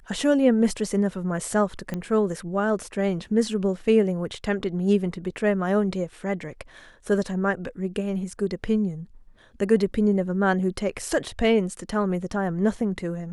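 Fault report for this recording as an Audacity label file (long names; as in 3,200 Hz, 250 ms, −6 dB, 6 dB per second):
1.940000	1.940000	click −17 dBFS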